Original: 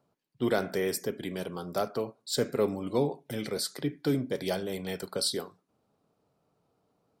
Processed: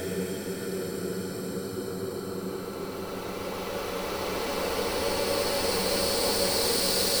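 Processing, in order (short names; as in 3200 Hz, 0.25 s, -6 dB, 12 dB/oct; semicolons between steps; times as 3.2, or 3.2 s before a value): low shelf 380 Hz +4 dB; wrapped overs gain 20.5 dB; Paulstretch 31×, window 0.25 s, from 4.99; gain +4 dB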